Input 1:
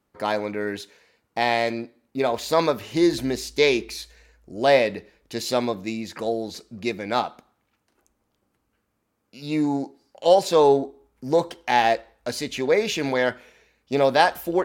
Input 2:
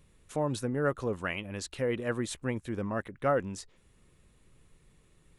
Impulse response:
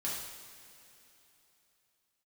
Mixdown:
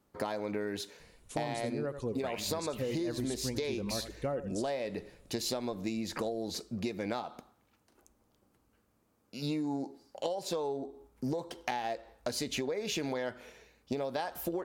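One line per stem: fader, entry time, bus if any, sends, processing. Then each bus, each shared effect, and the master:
+2.0 dB, 0.00 s, no send, no echo send, parametric band 2,100 Hz −4.5 dB 1.6 octaves; downward compressor, threshold −28 dBFS, peak gain reduction 15.5 dB
+1.5 dB, 1.00 s, send −22 dB, echo send −12 dB, reverb reduction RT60 0.95 s; parametric band 1,400 Hz −10.5 dB 1.3 octaves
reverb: on, pre-delay 3 ms
echo: single-tap delay 85 ms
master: downward compressor, threshold −31 dBFS, peak gain reduction 9.5 dB

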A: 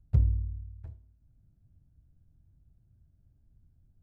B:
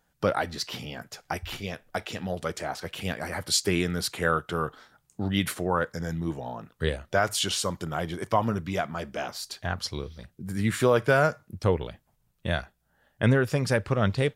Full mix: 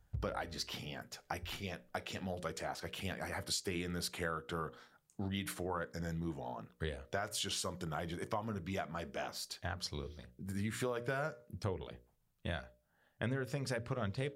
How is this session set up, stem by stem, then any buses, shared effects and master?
−5.0 dB, 0.00 s, no send, automatic ducking −15 dB, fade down 0.25 s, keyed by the second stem
−7.0 dB, 0.00 s, no send, mains-hum notches 60/120/180/240/300/360/420/480/540/600 Hz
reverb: not used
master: downward compressor 4 to 1, threshold −35 dBFS, peak gain reduction 10 dB

